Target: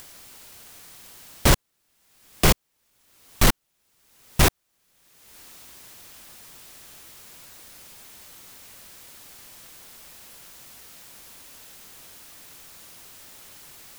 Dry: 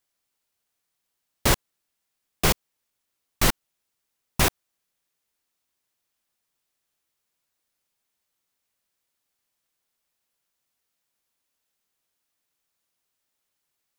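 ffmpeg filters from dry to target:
ffmpeg -i in.wav -filter_complex "[0:a]lowshelf=frequency=260:gain=4.5,asplit=2[link_01][link_02];[link_02]acompressor=mode=upward:threshold=-19dB:ratio=2.5,volume=1dB[link_03];[link_01][link_03]amix=inputs=2:normalize=0,asoftclip=type=tanh:threshold=-6.5dB,volume=-2dB" out.wav

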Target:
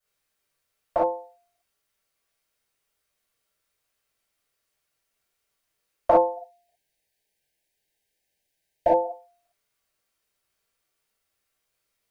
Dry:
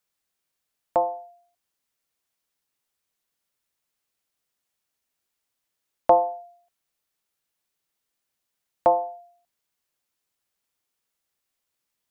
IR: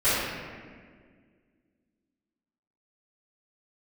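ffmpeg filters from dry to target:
-filter_complex "[0:a]asplit=3[link_01][link_02][link_03];[link_01]afade=type=out:start_time=6.36:duration=0.02[link_04];[link_02]asuperstop=centerf=1200:order=12:qfactor=1.9,afade=type=in:start_time=6.36:duration=0.02,afade=type=out:start_time=9.04:duration=0.02[link_05];[link_03]afade=type=in:start_time=9.04:duration=0.02[link_06];[link_04][link_05][link_06]amix=inputs=3:normalize=0[link_07];[1:a]atrim=start_sample=2205,atrim=end_sample=3528[link_08];[link_07][link_08]afir=irnorm=-1:irlink=0,volume=-8.5dB"

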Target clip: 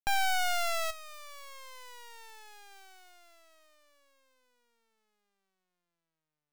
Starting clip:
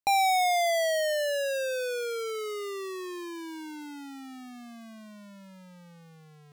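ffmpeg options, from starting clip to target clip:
ffmpeg -i in.wav -filter_complex "[0:a]lowshelf=frequency=400:gain=-9,asettb=1/sr,asplit=3[link_01][link_02][link_03];[link_01]atrim=end=0.904[link_04];[link_02]atrim=start=0.9:end=2.71,asetpts=PTS-STARTPTS,afade=type=in:duration=0.004:curve=qsin,afade=type=out:start_time=1.806:duration=0.004:curve=qsin,acompressor=threshold=-33dB:ratio=6[link_05];[link_03]atrim=start=2.706[link_06];[link_04][link_05]acrossfade=duration=0.004:curve1=hsin:curve2=qsin[link_07];[link_07][link_06]acrossfade=duration=0.004:curve1=qsin:curve2=hsin,aeval=exprs='0.119*(cos(1*acos(clip(val(0)/0.119,-1,1)))-cos(1*PI/2))+0.0211*(cos(3*acos(clip(val(0)/0.119,-1,1)))-cos(3*PI/2))+0.0531*(cos(4*acos(clip(val(0)/0.119,-1,1)))-cos(4*PI/2))+0.00944*(cos(6*acos(clip(val(0)/0.119,-1,1)))-cos(6*PI/2))+0.00841*(cos(7*acos(clip(val(0)/0.119,-1,1)))-cos(7*PI/2))':channel_layout=same,volume=-4dB" out.wav

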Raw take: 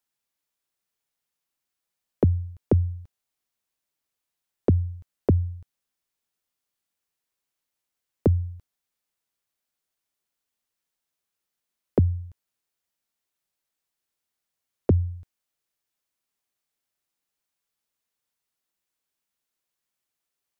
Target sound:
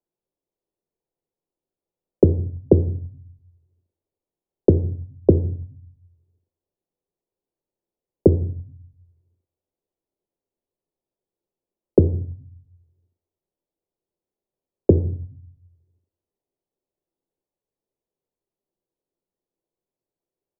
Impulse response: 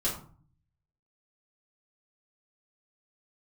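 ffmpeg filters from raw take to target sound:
-filter_complex "[0:a]firequalizer=gain_entry='entry(200,0);entry(370,8);entry(1500,-22)':delay=0.05:min_phase=1,asplit=2[link_01][link_02];[1:a]atrim=start_sample=2205,asetrate=37926,aresample=44100[link_03];[link_02][link_03]afir=irnorm=-1:irlink=0,volume=-16.5dB[link_04];[link_01][link_04]amix=inputs=2:normalize=0,volume=2dB"

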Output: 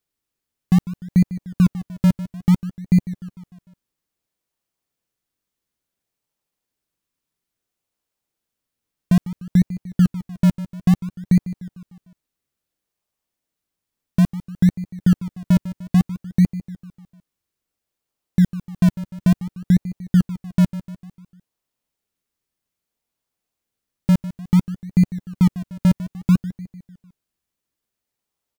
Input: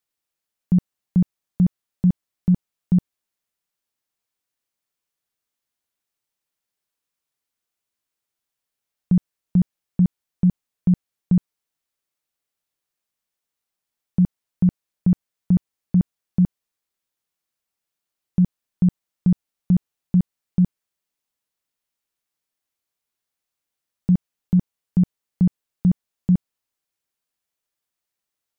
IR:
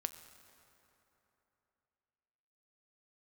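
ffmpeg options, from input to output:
-filter_complex "[0:a]aecho=1:1:150|300|450|600|750:0.178|0.096|0.0519|0.028|0.0151,asplit=2[link_01][link_02];[link_02]acrusher=samples=39:mix=1:aa=0.000001:lfo=1:lforange=39:lforate=0.59,volume=-9dB[link_03];[link_01][link_03]amix=inputs=2:normalize=0"

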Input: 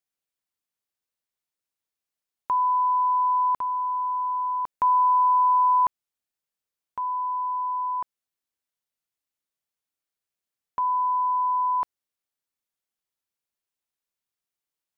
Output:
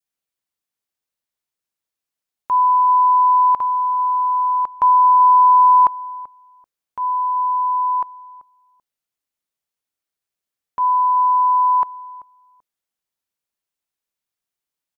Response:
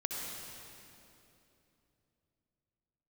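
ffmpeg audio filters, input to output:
-filter_complex "[0:a]asplit=2[link_01][link_02];[link_02]adelay=386,lowpass=frequency=1100:poles=1,volume=-16.5dB,asplit=2[link_03][link_04];[link_04]adelay=386,lowpass=frequency=1100:poles=1,volume=0.24[link_05];[link_01][link_03][link_05]amix=inputs=3:normalize=0,adynamicequalizer=threshold=0.0224:dfrequency=910:dqfactor=0.76:tfrequency=910:tqfactor=0.76:attack=5:release=100:ratio=0.375:range=3:mode=boostabove:tftype=bell,volume=2dB"

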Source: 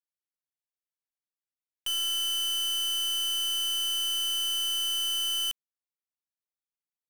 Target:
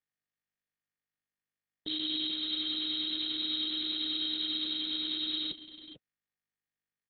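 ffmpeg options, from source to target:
ffmpeg -i in.wav -filter_complex "[0:a]highpass=frequency=78:width=0.5412,highpass=frequency=78:width=1.3066,equalizer=frequency=1100:width=1.2:gain=-6.5,alimiter=level_in=11dB:limit=-24dB:level=0:latency=1,volume=-11dB,afreqshift=460,acrusher=bits=5:dc=4:mix=0:aa=0.000001,equalizer=frequency=125:width_type=o:width=1:gain=11,equalizer=frequency=250:width_type=o:width=1:gain=6,equalizer=frequency=500:width_type=o:width=1:gain=-4,equalizer=frequency=1000:width_type=o:width=1:gain=-8,equalizer=frequency=4000:width_type=o:width=1:gain=6,equalizer=frequency=8000:width_type=o:width=1:gain=6,aeval=exprs='val(0)*sin(2*PI*310*n/s)':channel_layout=same,asplit=2[link_01][link_02];[link_02]adelay=437.3,volume=-10dB,highshelf=frequency=4000:gain=-9.84[link_03];[link_01][link_03]amix=inputs=2:normalize=0,volume=8dB" -ar 48000 -c:a libopus -b:a 6k out.opus

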